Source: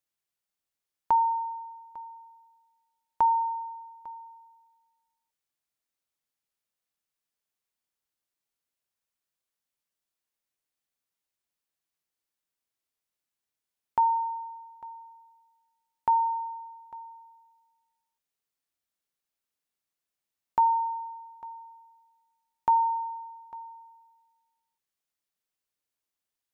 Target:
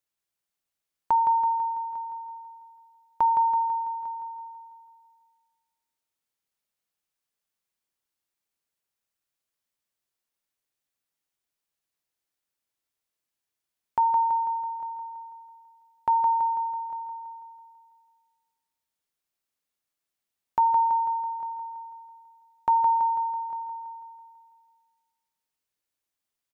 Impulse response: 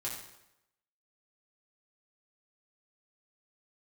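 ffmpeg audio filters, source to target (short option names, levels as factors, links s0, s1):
-filter_complex "[0:a]aecho=1:1:165|330|495|660|825|990|1155:0.473|0.265|0.148|0.0831|0.0465|0.0261|0.0146,asplit=2[s0][s1];[1:a]atrim=start_sample=2205[s2];[s1][s2]afir=irnorm=-1:irlink=0,volume=0.075[s3];[s0][s3]amix=inputs=2:normalize=0"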